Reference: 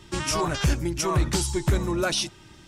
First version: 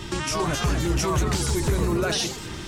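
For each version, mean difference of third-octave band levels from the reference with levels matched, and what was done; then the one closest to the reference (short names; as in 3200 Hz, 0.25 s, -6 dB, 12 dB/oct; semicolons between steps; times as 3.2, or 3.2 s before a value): 6.5 dB: bell 10000 Hz -2.5 dB; in parallel at +2 dB: compressor, threshold -36 dBFS, peak gain reduction 17 dB; on the sum: limiter -24 dBFS, peak gain reduction 11 dB; echoes that change speed 0.293 s, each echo +2 st, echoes 3, each echo -6 dB; gain +6.5 dB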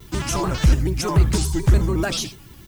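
4.5 dB: echo 81 ms -13.5 dB; added noise violet -52 dBFS; low shelf 180 Hz +9.5 dB; shaped vibrato square 6.9 Hz, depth 160 cents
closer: second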